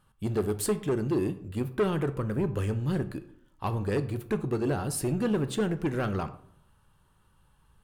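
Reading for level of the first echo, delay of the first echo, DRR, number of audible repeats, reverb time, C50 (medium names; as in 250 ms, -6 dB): no echo, no echo, 10.5 dB, no echo, 0.65 s, 14.5 dB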